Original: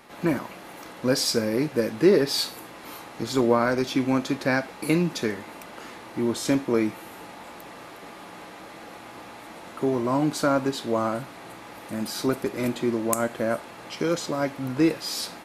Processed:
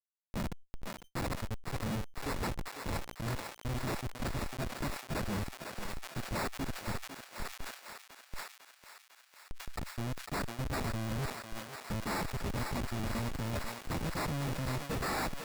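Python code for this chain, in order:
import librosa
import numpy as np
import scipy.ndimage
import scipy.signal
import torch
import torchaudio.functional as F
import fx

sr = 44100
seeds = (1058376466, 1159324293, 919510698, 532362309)

p1 = fx.bin_expand(x, sr, power=1.5)
p2 = fx.highpass(p1, sr, hz=96.0, slope=6)
p3 = fx.low_shelf_res(p2, sr, hz=250.0, db=8.5, q=1.5)
p4 = fx.over_compress(p3, sr, threshold_db=-37.0, ratio=-1.0)
p5 = fx.dynamic_eq(p4, sr, hz=4300.0, q=1.5, threshold_db=-47.0, ratio=4.0, max_db=-5)
p6 = fx.schmitt(p5, sr, flips_db=-34.0)
p7 = fx.sample_hold(p6, sr, seeds[0], rate_hz=3100.0, jitter_pct=0)
p8 = 10.0 ** (-39.5 / 20.0) * np.tanh(p7 / 10.0 ** (-39.5 / 20.0))
p9 = p8 + fx.echo_thinned(p8, sr, ms=501, feedback_pct=77, hz=580.0, wet_db=-5, dry=0)
p10 = fx.sustainer(p9, sr, db_per_s=110.0)
y = p10 * librosa.db_to_amplitude(7.0)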